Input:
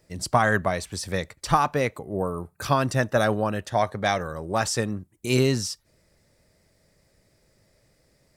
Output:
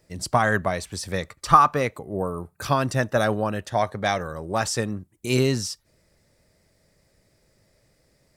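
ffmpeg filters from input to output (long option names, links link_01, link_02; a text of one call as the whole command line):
ffmpeg -i in.wav -filter_complex "[0:a]asettb=1/sr,asplit=3[link_01][link_02][link_03];[link_01]atrim=end=1.224[link_04];[link_02]atrim=start=1.22:end=1.83,asetpts=PTS-STARTPTS,afade=type=in:duration=0.004:curve=qsin,afade=type=out:start_time=0.606:duration=0.004:curve=qsin,equalizer=frequency=1200:width_type=o:width=0.27:gain=11.5[link_05];[link_03]atrim=start=1.826[link_06];[link_04][link_05]acrossfade=duration=0.004:curve1=hsin:curve2=qsin[link_07];[link_07][link_06]acrossfade=duration=0.004:curve1=qsin:curve2=hsin" out.wav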